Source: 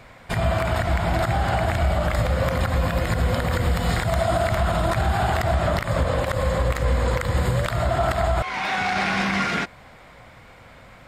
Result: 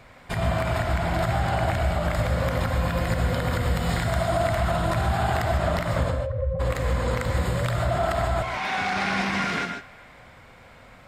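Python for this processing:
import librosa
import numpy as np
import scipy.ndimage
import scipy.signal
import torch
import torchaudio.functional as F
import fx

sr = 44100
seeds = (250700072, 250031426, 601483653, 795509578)

y = fx.spec_expand(x, sr, power=3.2, at=(6.1, 6.59), fade=0.02)
y = fx.echo_banded(y, sr, ms=206, feedback_pct=57, hz=1800.0, wet_db=-20.0)
y = fx.rev_gated(y, sr, seeds[0], gate_ms=170, shape='rising', drr_db=5.0)
y = F.gain(torch.from_numpy(y), -3.5).numpy()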